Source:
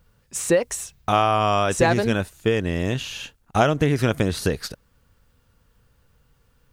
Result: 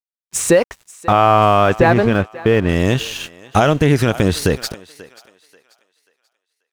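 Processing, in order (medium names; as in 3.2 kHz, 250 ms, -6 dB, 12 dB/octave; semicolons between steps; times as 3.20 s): 0.65–2.69 s: low-pass 2.5 kHz 12 dB/octave; crossover distortion -42.5 dBFS; thinning echo 536 ms, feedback 32%, high-pass 510 Hz, level -20 dB; loudness maximiser +10.5 dB; trim -1.5 dB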